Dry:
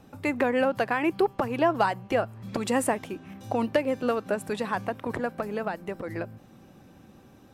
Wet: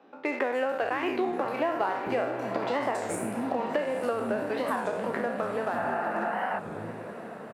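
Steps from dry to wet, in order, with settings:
peak hold with a decay on every bin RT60 0.69 s
high-shelf EQ 3,000 Hz −9.5 dB
three-band delay without the direct sound mids, highs, lows 290/670 ms, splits 270/4,800 Hz
in parallel at −6 dB: dead-zone distortion −35.5 dBFS
on the sum: high-pass filter 160 Hz 12 dB per octave
on a send: feedback delay with all-pass diffusion 942 ms, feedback 54%, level −12 dB
on the sum: healed spectral selection 0:05.78–0:06.58, 400–3,000 Hz before
downward compressor 3 to 1, threshold −27 dBFS, peak gain reduction 10 dB
wow of a warped record 33 1/3 rpm, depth 160 cents

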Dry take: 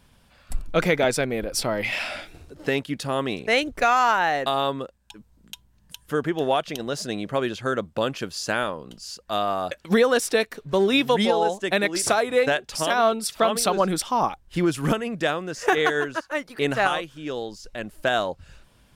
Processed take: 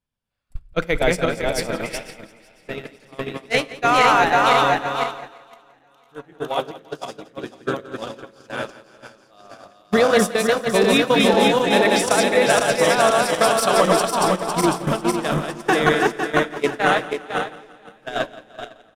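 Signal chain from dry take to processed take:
feedback delay that plays each chunk backwards 252 ms, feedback 80%, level −1.5 dB
noise gate −18 dBFS, range −30 dB
repeating echo 171 ms, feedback 49%, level −18 dB
on a send at −18 dB: convolution reverb RT60 0.70 s, pre-delay 7 ms
on the sum: level +1.5 dB

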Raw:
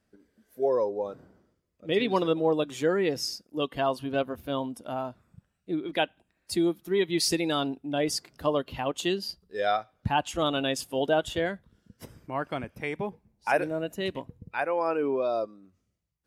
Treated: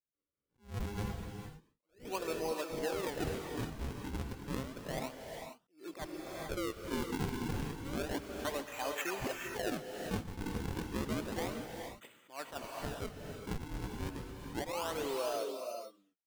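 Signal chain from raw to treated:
hearing-aid frequency compression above 2,400 Hz 4 to 1
noise gate −52 dBFS, range −25 dB
high-pass filter 260 Hz 12 dB per octave
low-shelf EQ 380 Hz −9.5 dB
downward compressor 5 to 1, threshold −31 dBFS, peak gain reduction 10 dB
sample-and-hold swept by an LFO 41×, swing 160% 0.31 Hz
reverb whose tail is shaped and stops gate 480 ms rising, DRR 3.5 dB
level that may rise only so fast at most 200 dB per second
level −3 dB

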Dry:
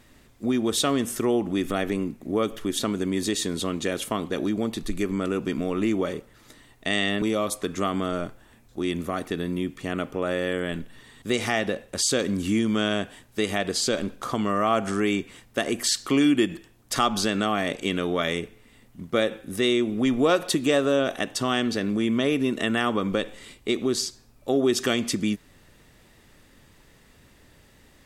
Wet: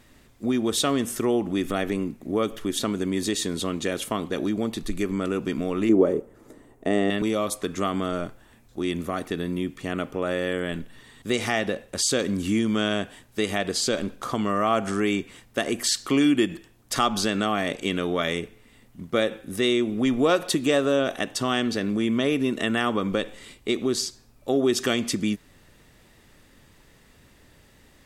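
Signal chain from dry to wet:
0:05.89–0:07.10: drawn EQ curve 130 Hz 0 dB, 410 Hz +10 dB, 4,000 Hz −15 dB, 7,400 Hz −6 dB

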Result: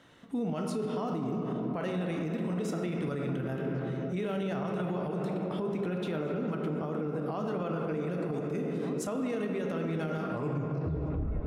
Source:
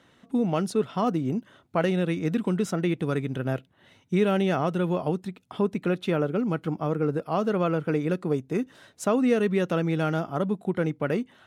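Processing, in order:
turntable brake at the end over 1.31 s
rectangular room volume 190 cubic metres, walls hard, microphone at 0.35 metres
downward compressor 3 to 1, threshold −26 dBFS, peak gain reduction 7.5 dB
on a send: echo through a band-pass that steps 511 ms, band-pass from 360 Hz, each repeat 0.7 octaves, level −9.5 dB
on the sum: brickwall limiter −25 dBFS, peak gain reduction 10 dB

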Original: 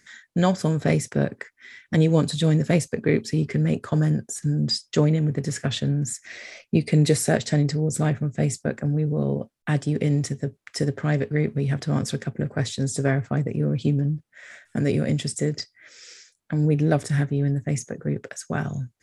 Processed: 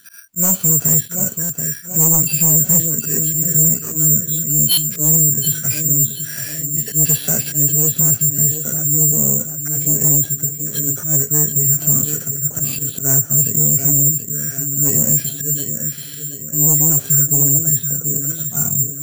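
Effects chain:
hearing-aid frequency compression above 1,200 Hz 1.5 to 1
parametric band 470 Hz −3.5 dB 0.94 octaves
harmonic and percussive parts rebalanced percussive −15 dB
low-shelf EQ 130 Hz −4 dB
in parallel at −2.5 dB: downward compressor, threshold −32 dBFS, peak gain reduction 14.5 dB
on the sum: volume swells 127 ms
on a send: feedback echo with a low-pass in the loop 731 ms, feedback 45%, low-pass 4,500 Hz, level −9.5 dB
on the sum: bad sample-rate conversion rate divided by 6×, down filtered, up zero stuff
sine wavefolder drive 8 dB, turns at 5.5 dBFS
buffer that repeats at 0:01.43/0:04.71, samples 256, times 10
level −8 dB

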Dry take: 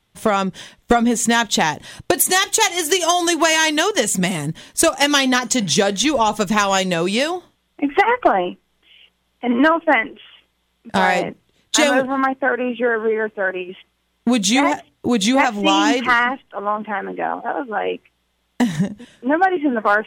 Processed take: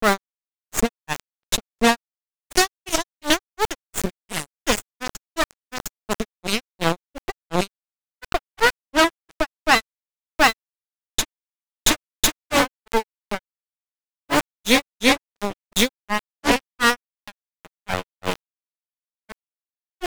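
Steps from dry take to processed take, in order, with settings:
harmonic generator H 3 −36 dB, 4 −11 dB, 5 −35 dB, 8 −15 dB, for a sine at −2.5 dBFS
centre clipping without the shift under −16 dBFS
granular cloud 181 ms, grains 2.8 per second, spray 727 ms
level −1 dB

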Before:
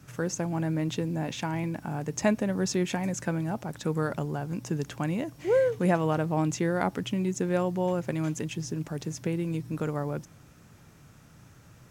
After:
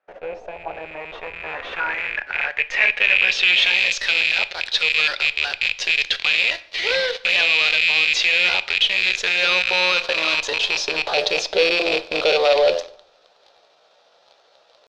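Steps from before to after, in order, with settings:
loose part that buzzes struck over −32 dBFS, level −17 dBFS
parametric band 100 Hz +4 dB 1.7 octaves
hum removal 85.38 Hz, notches 8
high-pass filter sweep 2,000 Hz → 680 Hz, 0:07.03–0:09.09
in parallel at −9 dB: fuzz pedal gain 47 dB, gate −49 dBFS
on the sum: low-pass filter sweep 690 Hz → 4,100 Hz, 0:00.41–0:03.11
tempo change 0.8×
octave-band graphic EQ 125/250/500/1,000/2,000/4,000/8,000 Hz −10/−7/+10/−3/−5/+6/−6 dB
on a send at −13 dB: convolution reverb RT60 0.70 s, pre-delay 4 ms

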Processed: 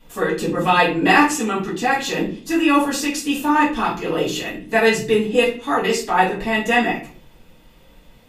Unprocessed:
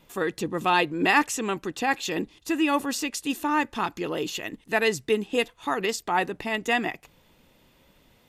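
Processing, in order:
0:01.33–0:01.84: notch comb filter 530 Hz
convolution reverb RT60 0.45 s, pre-delay 3 ms, DRR −8.5 dB
level −2 dB

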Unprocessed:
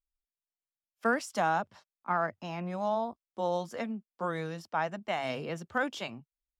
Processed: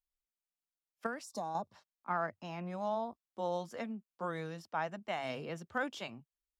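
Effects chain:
0:01.24–0:01.72: gain on a spectral selection 1,200–3,500 Hz −19 dB
0:01.06–0:01.55: downward compressor 6 to 1, threshold −31 dBFS, peak gain reduction 8.5 dB
level −5 dB

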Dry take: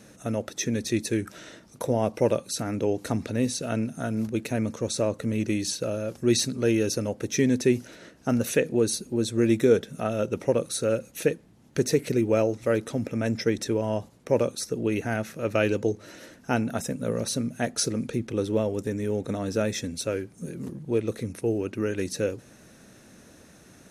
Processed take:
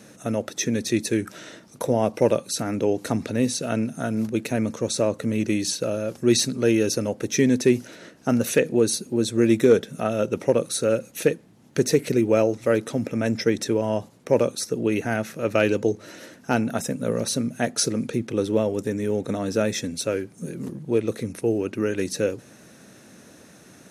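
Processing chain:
high-pass filter 110 Hz
hard clipping −11 dBFS, distortion −36 dB
level +3.5 dB

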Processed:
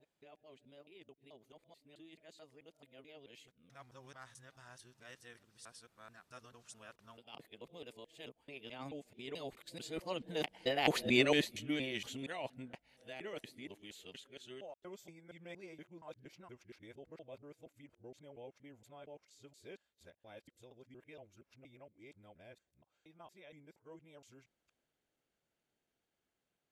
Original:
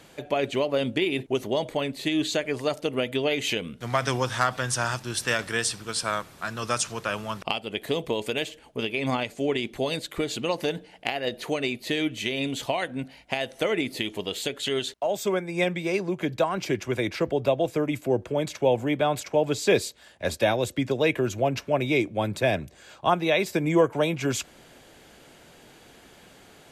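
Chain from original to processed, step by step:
reversed piece by piece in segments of 226 ms
source passing by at 0:11.07, 13 m/s, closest 2.5 metres
level +1 dB

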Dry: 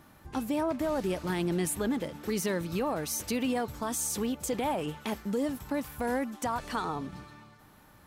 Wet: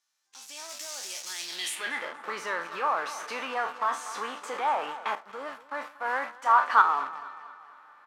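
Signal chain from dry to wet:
peak hold with a decay on every bin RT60 0.35 s
meter weighting curve A
in parallel at −7.5 dB: log-companded quantiser 2 bits
on the sum: repeating echo 236 ms, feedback 48%, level −15 dB
automatic gain control gain up to 16 dB
band-pass filter sweep 6,100 Hz → 1,200 Hz, 0:01.39–0:02.14
0:00.69–0:01.76: high-shelf EQ 10,000 Hz +7.5 dB
0:05.15–0:06.82: multiband upward and downward expander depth 100%
level −7.5 dB

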